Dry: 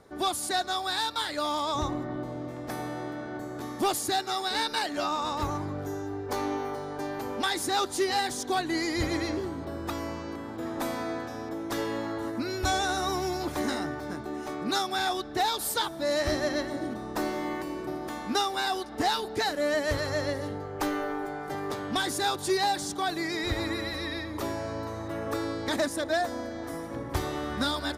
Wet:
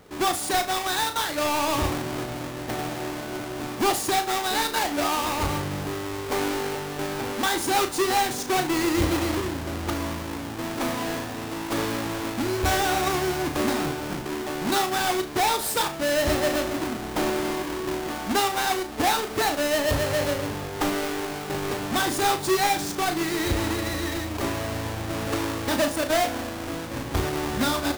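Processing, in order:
each half-wave held at its own peak
flutter between parallel walls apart 6 metres, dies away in 0.26 s

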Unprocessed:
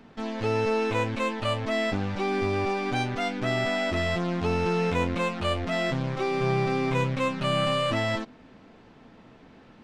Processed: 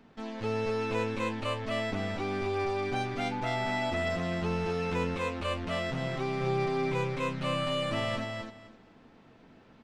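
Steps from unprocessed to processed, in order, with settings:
repeating echo 257 ms, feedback 18%, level −4 dB
0:03.31–0:03.92: steady tone 870 Hz −28 dBFS
level −6.5 dB

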